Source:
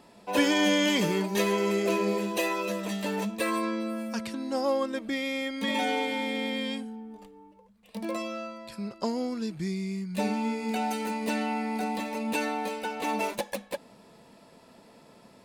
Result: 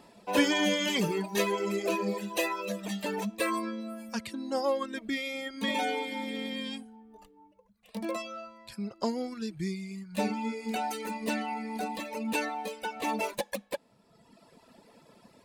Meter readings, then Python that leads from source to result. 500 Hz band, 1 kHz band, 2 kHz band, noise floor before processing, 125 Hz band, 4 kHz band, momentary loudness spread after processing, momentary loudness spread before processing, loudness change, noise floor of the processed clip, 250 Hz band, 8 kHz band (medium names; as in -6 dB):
-3.0 dB, -2.0 dB, -2.0 dB, -56 dBFS, -3.5 dB, -2.0 dB, 11 LU, 11 LU, -3.0 dB, -63 dBFS, -4.0 dB, -1.5 dB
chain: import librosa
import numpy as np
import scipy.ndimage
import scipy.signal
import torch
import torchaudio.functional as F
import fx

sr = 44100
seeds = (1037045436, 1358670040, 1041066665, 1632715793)

y = fx.dereverb_blind(x, sr, rt60_s=1.4)